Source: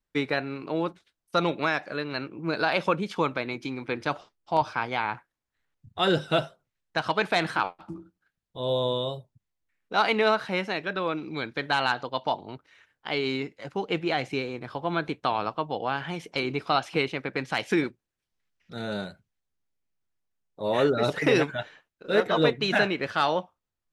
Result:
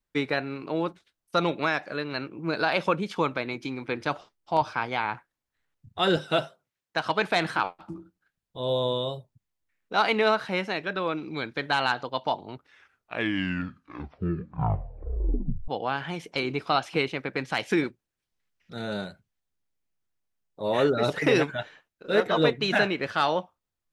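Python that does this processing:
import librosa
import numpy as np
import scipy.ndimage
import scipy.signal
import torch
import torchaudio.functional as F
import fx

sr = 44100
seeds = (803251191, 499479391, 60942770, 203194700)

y = fx.highpass(x, sr, hz=180.0, slope=6, at=(6.16, 7.1))
y = fx.edit(y, sr, fx.tape_stop(start_s=12.51, length_s=3.17), tone=tone)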